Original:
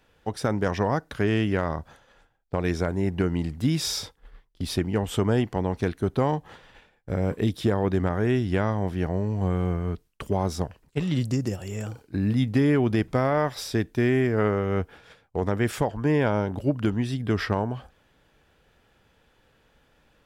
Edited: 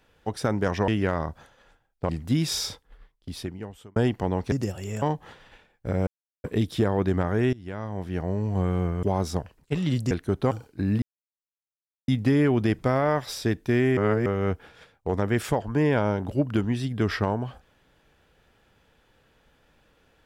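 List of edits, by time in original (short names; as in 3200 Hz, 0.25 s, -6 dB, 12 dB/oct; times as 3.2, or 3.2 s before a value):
0.88–1.38 cut
2.59–3.42 cut
4.01–5.29 fade out
5.85–6.25 swap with 11.36–11.86
7.3 insert silence 0.37 s
8.39–9.3 fade in, from -21.5 dB
9.89–10.28 cut
12.37 insert silence 1.06 s
14.26–14.55 reverse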